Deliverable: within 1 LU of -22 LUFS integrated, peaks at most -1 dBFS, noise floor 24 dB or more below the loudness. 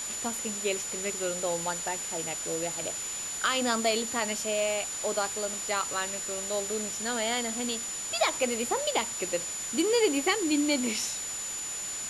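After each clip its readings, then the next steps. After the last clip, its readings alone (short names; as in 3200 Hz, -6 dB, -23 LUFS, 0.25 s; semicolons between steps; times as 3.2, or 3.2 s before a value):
steady tone 7000 Hz; tone level -34 dBFS; noise floor -36 dBFS; noise floor target -53 dBFS; loudness -29.0 LUFS; peak -13.5 dBFS; loudness target -22.0 LUFS
-> notch 7000 Hz, Q 30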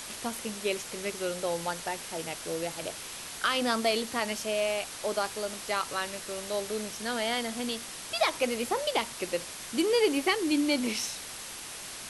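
steady tone none; noise floor -42 dBFS; noise floor target -55 dBFS
-> denoiser 13 dB, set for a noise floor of -42 dBFS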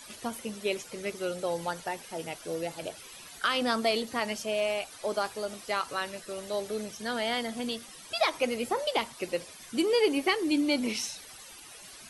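noise floor -49 dBFS; noise floor target -55 dBFS
-> denoiser 6 dB, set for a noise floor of -49 dBFS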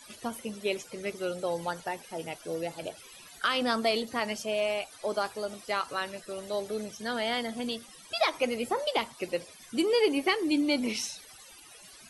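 noise floor -52 dBFS; noise floor target -55 dBFS
-> denoiser 6 dB, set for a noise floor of -52 dBFS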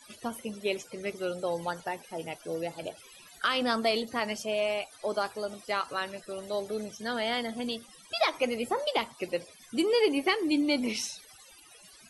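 noise floor -55 dBFS; loudness -31.0 LUFS; peak -14.5 dBFS; loudness target -22.0 LUFS
-> gain +9 dB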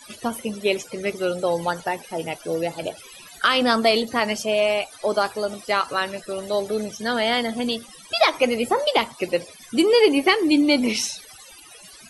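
loudness -22.0 LUFS; peak -5.5 dBFS; noise floor -46 dBFS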